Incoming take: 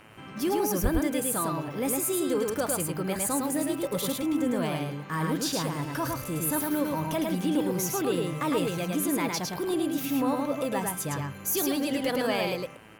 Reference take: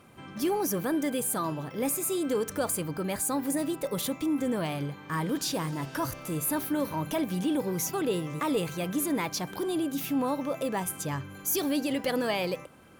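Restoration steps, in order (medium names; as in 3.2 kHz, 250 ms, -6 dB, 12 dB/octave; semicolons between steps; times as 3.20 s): de-hum 108.1 Hz, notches 29; 0.82–0.94 s: high-pass 140 Hz 24 dB/octave; inverse comb 107 ms -3 dB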